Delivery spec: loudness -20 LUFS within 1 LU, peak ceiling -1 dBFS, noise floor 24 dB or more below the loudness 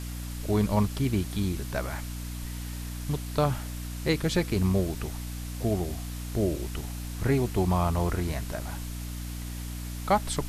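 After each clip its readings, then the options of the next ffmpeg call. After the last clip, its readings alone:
hum 60 Hz; highest harmonic 300 Hz; hum level -33 dBFS; noise floor -36 dBFS; noise floor target -54 dBFS; loudness -30.0 LUFS; peak level -11.5 dBFS; loudness target -20.0 LUFS
-> -af "bandreject=f=60:t=h:w=4,bandreject=f=120:t=h:w=4,bandreject=f=180:t=h:w=4,bandreject=f=240:t=h:w=4,bandreject=f=300:t=h:w=4"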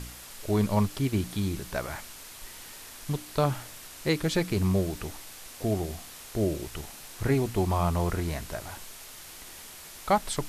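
hum not found; noise floor -46 dBFS; noise floor target -54 dBFS
-> -af "afftdn=nr=8:nf=-46"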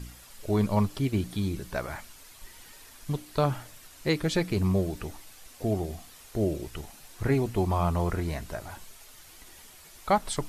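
noise floor -51 dBFS; noise floor target -54 dBFS
-> -af "afftdn=nr=6:nf=-51"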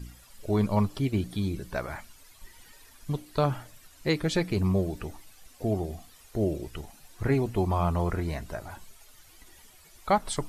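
noise floor -55 dBFS; loudness -29.5 LUFS; peak level -11.0 dBFS; loudness target -20.0 LUFS
-> -af "volume=2.99"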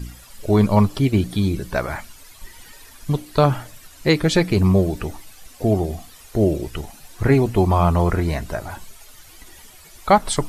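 loudness -20.0 LUFS; peak level -1.5 dBFS; noise floor -45 dBFS

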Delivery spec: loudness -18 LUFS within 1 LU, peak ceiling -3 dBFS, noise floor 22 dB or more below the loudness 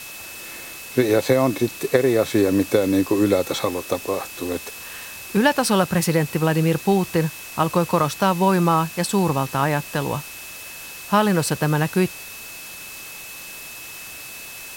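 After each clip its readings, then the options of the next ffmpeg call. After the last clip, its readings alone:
steady tone 2.6 kHz; tone level -39 dBFS; noise floor -37 dBFS; noise floor target -43 dBFS; loudness -20.5 LUFS; peak level -2.5 dBFS; loudness target -18.0 LUFS
-> -af "bandreject=f=2600:w=30"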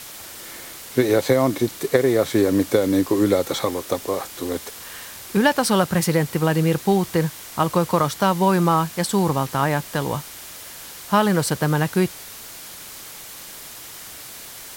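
steady tone not found; noise floor -38 dBFS; noise floor target -43 dBFS
-> -af "afftdn=nr=6:nf=-38"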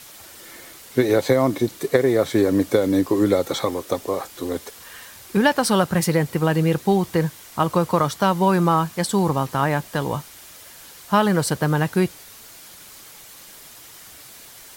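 noise floor -44 dBFS; loudness -21.0 LUFS; peak level -2.5 dBFS; loudness target -18.0 LUFS
-> -af "volume=1.41,alimiter=limit=0.708:level=0:latency=1"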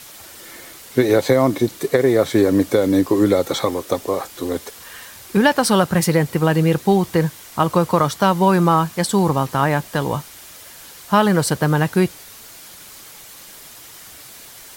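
loudness -18.0 LUFS; peak level -3.0 dBFS; noise floor -41 dBFS

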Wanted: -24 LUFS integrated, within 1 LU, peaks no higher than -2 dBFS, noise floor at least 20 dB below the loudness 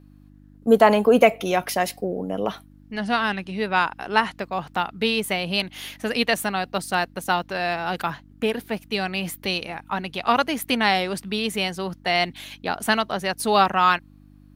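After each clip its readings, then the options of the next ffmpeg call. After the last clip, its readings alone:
hum 50 Hz; highest harmonic 300 Hz; hum level -49 dBFS; loudness -23.0 LUFS; peak level -1.5 dBFS; loudness target -24.0 LUFS
-> -af "bandreject=f=50:t=h:w=4,bandreject=f=100:t=h:w=4,bandreject=f=150:t=h:w=4,bandreject=f=200:t=h:w=4,bandreject=f=250:t=h:w=4,bandreject=f=300:t=h:w=4"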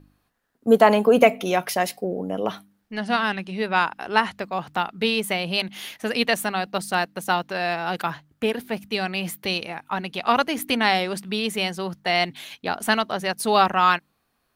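hum not found; loudness -23.0 LUFS; peak level -2.0 dBFS; loudness target -24.0 LUFS
-> -af "volume=0.891"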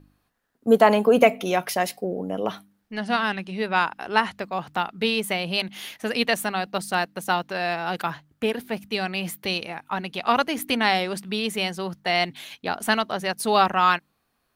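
loudness -24.0 LUFS; peak level -3.0 dBFS; noise floor -72 dBFS

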